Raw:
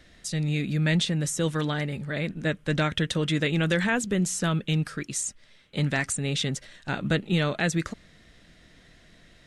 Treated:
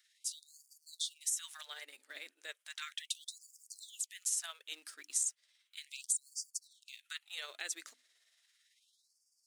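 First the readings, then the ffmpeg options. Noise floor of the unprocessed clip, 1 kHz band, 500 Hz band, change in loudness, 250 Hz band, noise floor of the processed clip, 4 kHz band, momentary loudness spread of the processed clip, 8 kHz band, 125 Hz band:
-56 dBFS, -22.0 dB, -32.0 dB, -12.5 dB, under -40 dB, -79 dBFS, -11.0 dB, 18 LU, -3.5 dB, under -40 dB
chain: -filter_complex "[0:a]aderivative,bandreject=f=50:t=h:w=6,bandreject=f=100:t=h:w=6,bandreject=f=150:t=h:w=6,bandreject=f=200:t=h:w=6,bandreject=f=250:t=h:w=6,bandreject=f=300:t=h:w=6,asplit=2[a][b];[b]acrusher=bits=7:mix=0:aa=0.000001,volume=-8.5dB[c];[a][c]amix=inputs=2:normalize=0,tremolo=f=18:d=0.4,afftfilt=real='re*gte(b*sr/1024,230*pow(4600/230,0.5+0.5*sin(2*PI*0.35*pts/sr)))':imag='im*gte(b*sr/1024,230*pow(4600/230,0.5+0.5*sin(2*PI*0.35*pts/sr)))':win_size=1024:overlap=0.75,volume=-4.5dB"

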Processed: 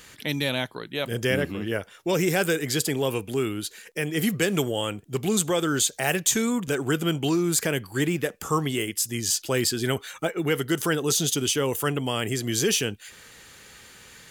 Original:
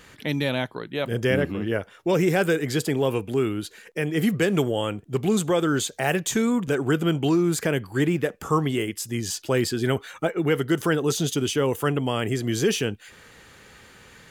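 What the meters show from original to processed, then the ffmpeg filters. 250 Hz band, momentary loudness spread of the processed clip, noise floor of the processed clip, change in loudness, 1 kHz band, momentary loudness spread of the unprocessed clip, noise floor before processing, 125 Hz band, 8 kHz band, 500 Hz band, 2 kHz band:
-3.0 dB, 7 LU, -51 dBFS, -1.0 dB, -2.0 dB, 6 LU, -51 dBFS, -3.0 dB, +6.5 dB, -2.5 dB, 0.0 dB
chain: -af "highshelf=f=3k:g=11,volume=-3dB"

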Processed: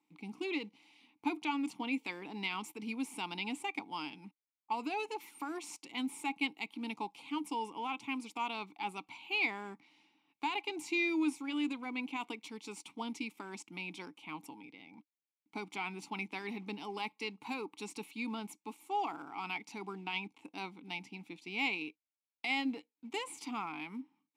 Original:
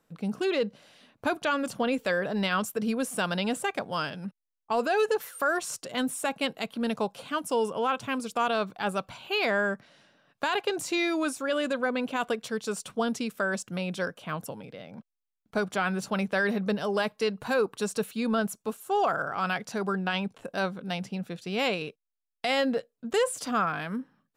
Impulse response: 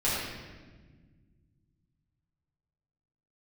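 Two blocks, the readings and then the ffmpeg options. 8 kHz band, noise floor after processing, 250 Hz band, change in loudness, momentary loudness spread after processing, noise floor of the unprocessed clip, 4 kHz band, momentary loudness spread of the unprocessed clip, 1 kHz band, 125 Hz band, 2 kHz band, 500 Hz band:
-12.5 dB, under -85 dBFS, -8.0 dB, -9.5 dB, 12 LU, -85 dBFS, -7.5 dB, 8 LU, -9.0 dB, -16.0 dB, -8.0 dB, -17.5 dB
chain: -filter_complex "[0:a]crystalizer=i=9.5:c=0,acrusher=bits=5:mode=log:mix=0:aa=0.000001,asplit=3[a][b][c];[a]bandpass=f=300:t=q:w=8,volume=0dB[d];[b]bandpass=f=870:t=q:w=8,volume=-6dB[e];[c]bandpass=f=2.24k:t=q:w=8,volume=-9dB[f];[d][e][f]amix=inputs=3:normalize=0"

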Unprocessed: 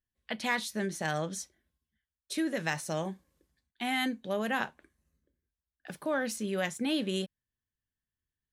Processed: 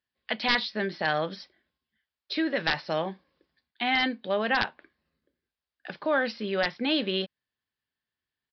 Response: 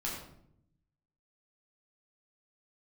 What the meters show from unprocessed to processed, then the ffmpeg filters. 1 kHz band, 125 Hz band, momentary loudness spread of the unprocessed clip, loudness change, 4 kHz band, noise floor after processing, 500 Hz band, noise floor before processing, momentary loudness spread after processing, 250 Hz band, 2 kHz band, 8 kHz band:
+6.0 dB, -1.0 dB, 10 LU, +5.0 dB, +8.0 dB, under -85 dBFS, +5.0 dB, under -85 dBFS, 10 LU, +2.0 dB, +6.5 dB, under -15 dB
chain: -af "highpass=f=430:p=1,aeval=exprs='(mod(8.91*val(0)+1,2)-1)/8.91':c=same,aresample=11025,aresample=44100,volume=7.5dB"

